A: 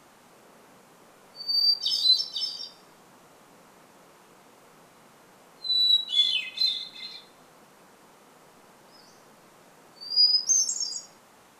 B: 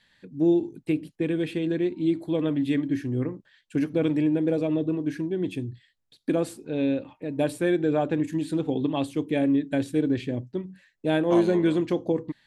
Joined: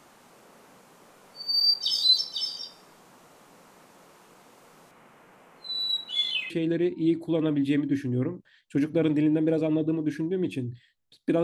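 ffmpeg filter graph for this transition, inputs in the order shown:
ffmpeg -i cue0.wav -i cue1.wav -filter_complex "[0:a]asettb=1/sr,asplit=3[link_01][link_02][link_03];[link_01]atrim=end=4.914[link_04];[link_02]atrim=start=4.91:end=6.5,asetpts=PTS-STARTPTS,afade=type=in:duration=0.004:curve=qsin,afade=type=out:start_time=1.586:duration=0.004:curve=qsin,highshelf=frequency=3200:width_type=q:width=1.5:gain=-6.5[link_05];[link_03]atrim=start=6.496[link_06];[link_04][link_05]acrossfade=duration=0.004:curve1=hsin:curve2=qsin[link_07];[link_07][link_06]acrossfade=duration=0.004:curve1=qsin:curve2=hsin,apad=whole_dur=11.43,atrim=end=11.43,atrim=end=6.502[link_08];[1:a]atrim=start=1.498:end=6.43[link_09];[link_08][link_09]acrossfade=duration=0.004:curve1=hsin:curve2=hsin" out.wav

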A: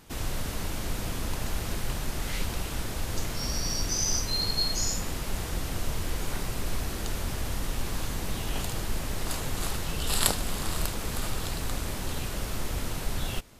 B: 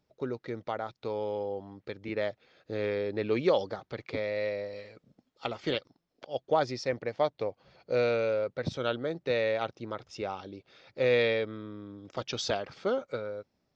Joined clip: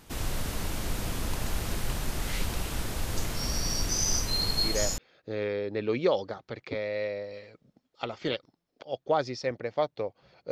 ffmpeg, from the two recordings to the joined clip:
ffmpeg -i cue0.wav -i cue1.wav -filter_complex "[0:a]apad=whole_dur=10.51,atrim=end=10.51,atrim=end=4.98,asetpts=PTS-STARTPTS[link_01];[1:a]atrim=start=1.96:end=7.93,asetpts=PTS-STARTPTS[link_02];[link_01][link_02]acrossfade=duration=0.44:curve1=log:curve2=log" out.wav

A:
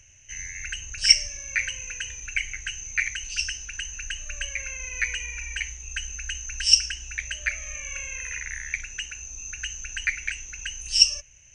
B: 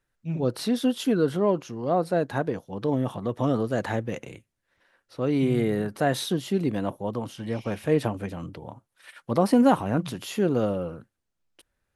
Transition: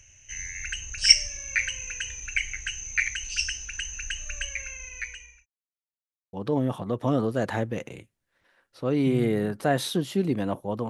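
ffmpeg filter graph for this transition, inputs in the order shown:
ffmpeg -i cue0.wav -i cue1.wav -filter_complex "[0:a]apad=whole_dur=10.89,atrim=end=10.89,asplit=2[link_01][link_02];[link_01]atrim=end=5.46,asetpts=PTS-STARTPTS,afade=type=out:start_time=4.31:duration=1.15[link_03];[link_02]atrim=start=5.46:end=6.33,asetpts=PTS-STARTPTS,volume=0[link_04];[1:a]atrim=start=2.69:end=7.25,asetpts=PTS-STARTPTS,afade=type=in:duration=0.004:curve=hsin[link_05];[link_03][link_04][link_05]concat=n=3:v=0:a=1" out.wav

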